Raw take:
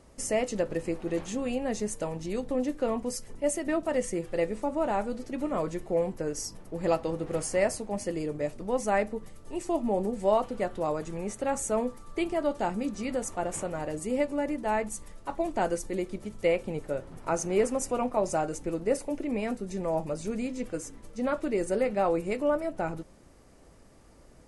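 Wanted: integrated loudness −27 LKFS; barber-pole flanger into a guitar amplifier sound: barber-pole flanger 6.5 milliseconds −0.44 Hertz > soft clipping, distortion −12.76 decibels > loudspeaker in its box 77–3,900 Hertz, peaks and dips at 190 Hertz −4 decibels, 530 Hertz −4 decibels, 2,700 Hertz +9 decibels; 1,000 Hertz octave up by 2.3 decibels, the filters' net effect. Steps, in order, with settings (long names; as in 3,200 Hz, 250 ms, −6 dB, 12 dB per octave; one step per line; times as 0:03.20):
parametric band 1,000 Hz +3.5 dB
barber-pole flanger 6.5 ms −0.44 Hz
soft clipping −25.5 dBFS
loudspeaker in its box 77–3,900 Hz, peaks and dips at 190 Hz −4 dB, 530 Hz −4 dB, 2,700 Hz +9 dB
level +9.5 dB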